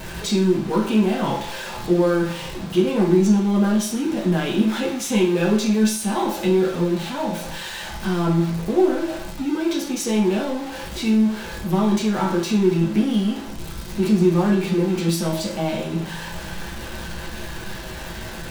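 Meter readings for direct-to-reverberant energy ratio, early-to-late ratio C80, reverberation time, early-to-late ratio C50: -3.5 dB, 10.5 dB, 0.45 s, 6.5 dB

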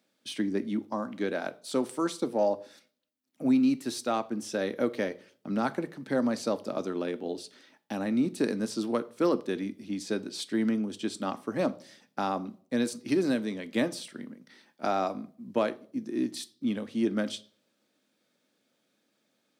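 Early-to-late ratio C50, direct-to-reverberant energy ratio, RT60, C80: 20.0 dB, 12.0 dB, 0.50 s, 24.5 dB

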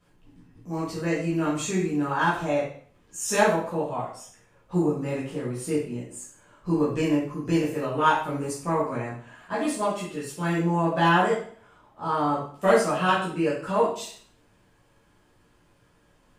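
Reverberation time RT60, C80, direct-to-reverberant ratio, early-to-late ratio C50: 0.50 s, 7.5 dB, -9.5 dB, 3.5 dB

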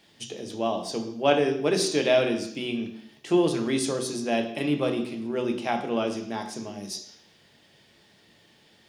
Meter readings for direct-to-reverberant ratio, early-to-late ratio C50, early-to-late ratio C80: 4.5 dB, 9.0 dB, 11.5 dB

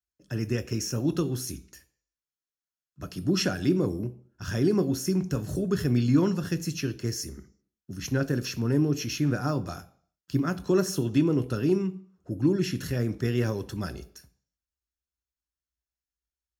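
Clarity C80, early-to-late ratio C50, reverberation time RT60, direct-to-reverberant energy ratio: 22.0 dB, 19.0 dB, 0.55 s, 10.5 dB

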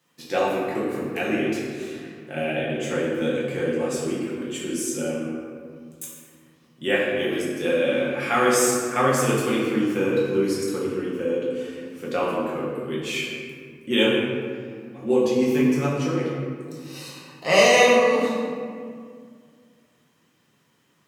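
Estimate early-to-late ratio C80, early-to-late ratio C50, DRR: 1.5 dB, 0.0 dB, -6.5 dB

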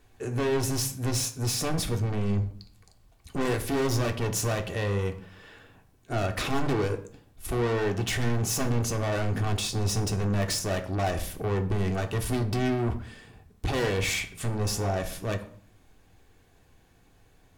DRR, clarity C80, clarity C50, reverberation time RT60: 4.0 dB, 16.5 dB, 13.0 dB, 0.50 s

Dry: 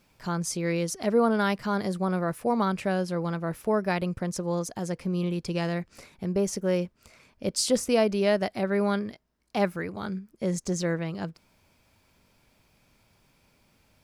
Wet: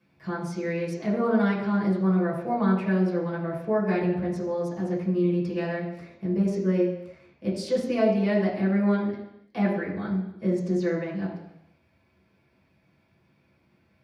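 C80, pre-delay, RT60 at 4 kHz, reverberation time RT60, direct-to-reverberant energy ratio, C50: 7.5 dB, 3 ms, 0.90 s, 0.80 s, -7.0 dB, 5.0 dB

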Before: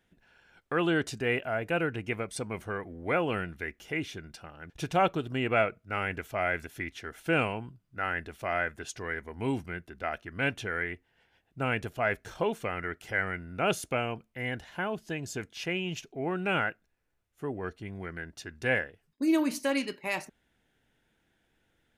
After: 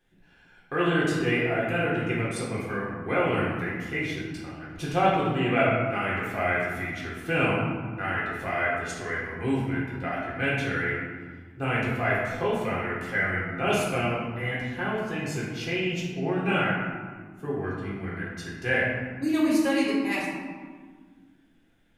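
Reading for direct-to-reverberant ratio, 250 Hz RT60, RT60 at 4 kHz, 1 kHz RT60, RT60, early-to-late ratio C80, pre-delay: -6.5 dB, 2.4 s, 0.85 s, 1.6 s, 1.7 s, 2.5 dB, 3 ms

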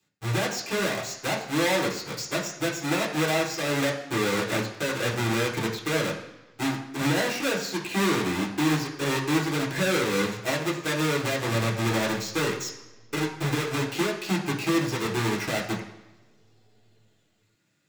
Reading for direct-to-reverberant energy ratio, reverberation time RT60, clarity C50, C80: -4.0 dB, 1.3 s, 7.5 dB, 10.5 dB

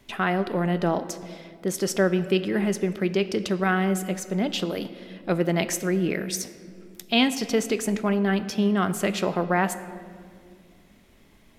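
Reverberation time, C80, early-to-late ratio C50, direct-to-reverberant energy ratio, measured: 2.1 s, 14.0 dB, 13.0 dB, 11.0 dB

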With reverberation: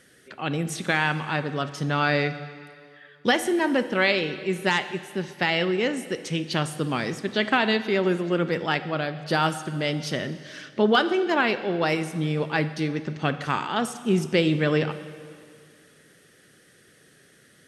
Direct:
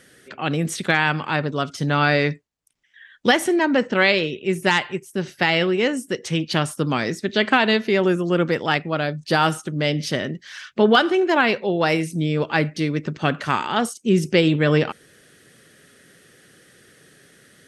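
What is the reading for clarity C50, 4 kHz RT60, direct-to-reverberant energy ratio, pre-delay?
13.0 dB, 2.1 s, 11.5 dB, 9 ms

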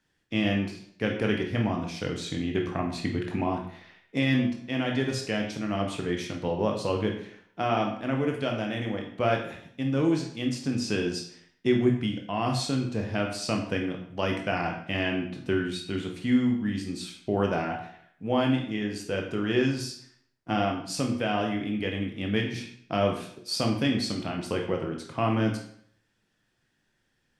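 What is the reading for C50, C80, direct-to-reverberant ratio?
6.5 dB, 9.0 dB, 1.0 dB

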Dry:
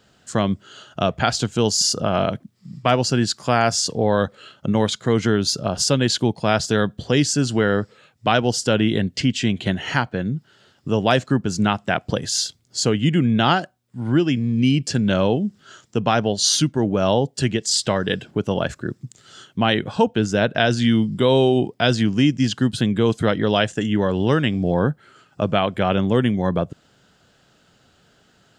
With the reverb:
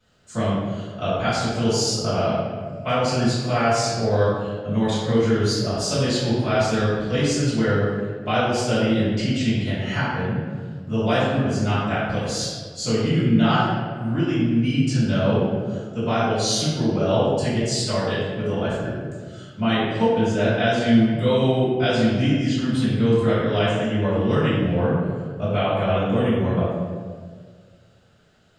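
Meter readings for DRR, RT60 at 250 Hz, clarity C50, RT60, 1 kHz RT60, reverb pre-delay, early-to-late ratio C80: -13.5 dB, 1.9 s, -2.0 dB, 1.7 s, 1.5 s, 3 ms, 1.0 dB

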